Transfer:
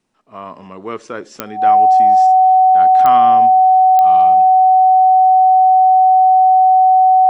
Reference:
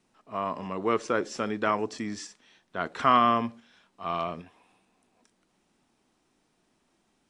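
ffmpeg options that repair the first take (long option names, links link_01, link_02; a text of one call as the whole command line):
ffmpeg -i in.wav -af "adeclick=threshold=4,bandreject=frequency=750:width=30" out.wav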